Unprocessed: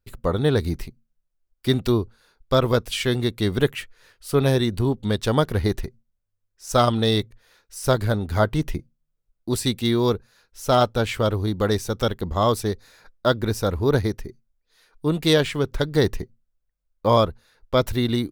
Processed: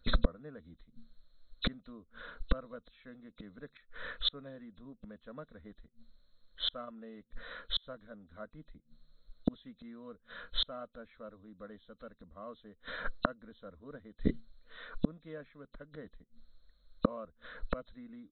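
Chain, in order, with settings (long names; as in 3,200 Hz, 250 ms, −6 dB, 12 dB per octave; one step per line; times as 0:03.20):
hearing-aid frequency compression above 2,500 Hz 4 to 1
gate with flip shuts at −24 dBFS, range −40 dB
phaser with its sweep stopped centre 560 Hz, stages 8
level +15.5 dB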